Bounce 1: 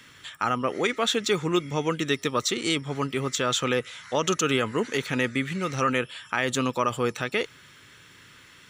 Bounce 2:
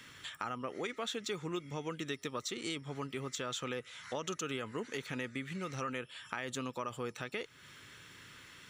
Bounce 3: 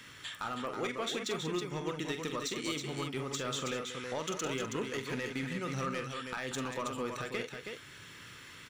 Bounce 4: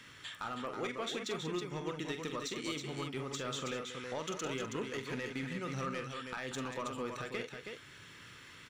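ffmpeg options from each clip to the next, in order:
-af "acompressor=threshold=0.0126:ratio=2.5,volume=0.708"
-filter_complex "[0:a]volume=35.5,asoftclip=hard,volume=0.0282,asplit=2[s0][s1];[s1]aecho=0:1:45|187|323:0.376|0.282|0.531[s2];[s0][s2]amix=inputs=2:normalize=0,volume=1.26"
-af "highshelf=f=9300:g=-6.5,volume=0.75"

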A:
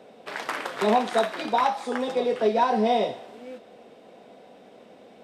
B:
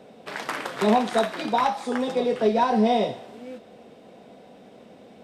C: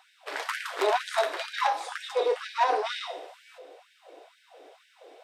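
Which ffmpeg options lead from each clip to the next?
-af "bass=f=250:g=8,treble=f=4000:g=2"
-af "aeval=exprs='(tanh(7.94*val(0)+0.55)-tanh(0.55))/7.94':c=same,bandreject=f=102.3:t=h:w=4,bandreject=f=204.6:t=h:w=4,bandreject=f=306.9:t=h:w=4,bandreject=f=409.2:t=h:w=4,bandreject=f=511.5:t=h:w=4,bandreject=f=613.8:t=h:w=4,bandreject=f=716.1:t=h:w=4,bandreject=f=818.4:t=h:w=4,bandreject=f=920.7:t=h:w=4,bandreject=f=1023:t=h:w=4,bandreject=f=1125.3:t=h:w=4,bandreject=f=1227.6:t=h:w=4,bandreject=f=1329.9:t=h:w=4,bandreject=f=1432.2:t=h:w=4,bandreject=f=1534.5:t=h:w=4,bandreject=f=1636.8:t=h:w=4,bandreject=f=1739.1:t=h:w=4,bandreject=f=1841.4:t=h:w=4,bandreject=f=1943.7:t=h:w=4,bandreject=f=2046:t=h:w=4,bandreject=f=2148.3:t=h:w=4,bandreject=f=2250.6:t=h:w=4,bandreject=f=2352.9:t=h:w=4,bandreject=f=2455.2:t=h:w=4,bandreject=f=2557.5:t=h:w=4,bandreject=f=2659.8:t=h:w=4,bandreject=f=2762.1:t=h:w=4,bandreject=f=2864.4:t=h:w=4,bandreject=f=2966.7:t=h:w=4,afftfilt=real='re*gte(b*sr/1024,270*pow(1500/270,0.5+0.5*sin(2*PI*2.1*pts/sr)))':imag='im*gte(b*sr/1024,270*pow(1500/270,0.5+0.5*sin(2*PI*2.1*pts/sr)))':win_size=1024:overlap=0.75,volume=1.33"

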